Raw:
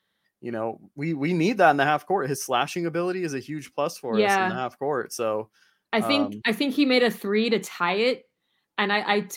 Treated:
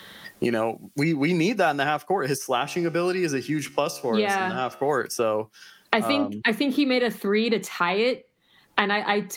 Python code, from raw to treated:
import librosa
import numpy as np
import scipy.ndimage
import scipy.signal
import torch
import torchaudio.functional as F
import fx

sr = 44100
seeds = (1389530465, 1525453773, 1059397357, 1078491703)

y = fx.comb_fb(x, sr, f0_hz=71.0, decay_s=0.73, harmonics='all', damping=0.0, mix_pct=40, at=(2.38, 4.89))
y = fx.band_squash(y, sr, depth_pct=100)